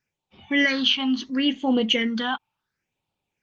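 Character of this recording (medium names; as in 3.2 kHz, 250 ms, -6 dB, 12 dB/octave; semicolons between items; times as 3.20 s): phasing stages 6, 0.72 Hz, lowest notch 460–1700 Hz; Opus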